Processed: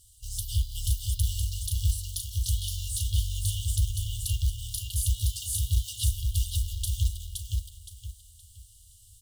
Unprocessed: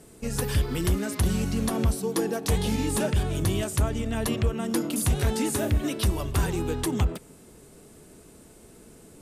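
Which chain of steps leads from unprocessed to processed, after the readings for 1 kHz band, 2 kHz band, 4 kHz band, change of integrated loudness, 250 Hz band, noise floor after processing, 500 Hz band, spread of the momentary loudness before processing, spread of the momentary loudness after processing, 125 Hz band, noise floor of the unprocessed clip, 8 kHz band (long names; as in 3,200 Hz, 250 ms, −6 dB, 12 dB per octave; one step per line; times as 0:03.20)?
below −40 dB, −19.5 dB, +0.5 dB, −3.0 dB, below −30 dB, −55 dBFS, below −40 dB, 3 LU, 7 LU, −1.5 dB, −51 dBFS, +0.5 dB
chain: repeating echo 519 ms, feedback 31%, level −3.5 dB
floating-point word with a short mantissa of 2 bits
brick-wall band-stop 110–2,800 Hz
tape delay 196 ms, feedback 71%, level −22 dB, low-pass 4,000 Hz
level −1.5 dB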